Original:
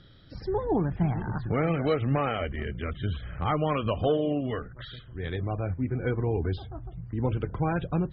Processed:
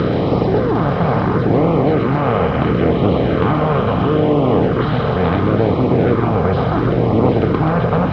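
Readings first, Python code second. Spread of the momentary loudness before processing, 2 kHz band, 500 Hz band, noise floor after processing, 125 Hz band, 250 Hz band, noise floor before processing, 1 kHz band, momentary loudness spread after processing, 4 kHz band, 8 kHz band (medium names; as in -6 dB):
11 LU, +12.5 dB, +14.5 dB, -18 dBFS, +13.0 dB, +15.0 dB, -48 dBFS, +14.5 dB, 2 LU, +11.0 dB, no reading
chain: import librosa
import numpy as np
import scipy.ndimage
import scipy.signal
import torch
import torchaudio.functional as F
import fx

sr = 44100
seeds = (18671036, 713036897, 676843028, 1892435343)

y = fx.bin_compress(x, sr, power=0.2)
y = fx.rider(y, sr, range_db=10, speed_s=0.5)
y = scipy.signal.sosfilt(scipy.signal.butter(2, 40.0, 'highpass', fs=sr, output='sos'), y)
y = fx.low_shelf(y, sr, hz=91.0, db=-5.5)
y = fx.echo_wet_highpass(y, sr, ms=128, feedback_pct=62, hz=1900.0, wet_db=-4.0)
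y = fx.quant_dither(y, sr, seeds[0], bits=8, dither='triangular')
y = scipy.signal.sosfilt(scipy.signal.butter(4, 4600.0, 'lowpass', fs=sr, output='sos'), y)
y = y + 10.0 ** (-6.0 / 20.0) * np.pad(y, (int(755 * sr / 1000.0), 0))[:len(y)]
y = fx.filter_lfo_notch(y, sr, shape='sine', hz=0.73, low_hz=300.0, high_hz=1600.0, q=1.7)
y = fx.peak_eq(y, sr, hz=2800.0, db=-8.5, octaves=1.9)
y = fx.doppler_dist(y, sr, depth_ms=0.16)
y = F.gain(torch.from_numpy(y), 6.0).numpy()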